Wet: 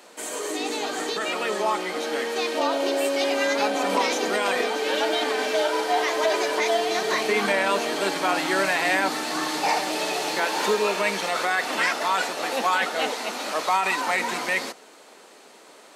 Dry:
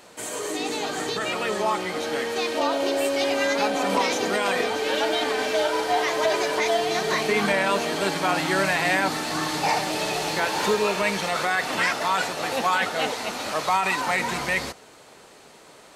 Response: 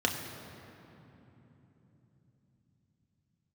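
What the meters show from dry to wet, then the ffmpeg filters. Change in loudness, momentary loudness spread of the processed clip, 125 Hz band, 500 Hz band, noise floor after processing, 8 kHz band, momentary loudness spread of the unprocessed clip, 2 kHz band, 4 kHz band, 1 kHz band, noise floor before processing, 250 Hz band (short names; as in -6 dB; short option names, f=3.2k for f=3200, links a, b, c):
0.0 dB, 5 LU, -9.0 dB, 0.0 dB, -50 dBFS, 0.0 dB, 5 LU, 0.0 dB, 0.0 dB, 0.0 dB, -49 dBFS, -1.5 dB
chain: -af "highpass=f=220:w=0.5412,highpass=f=220:w=1.3066"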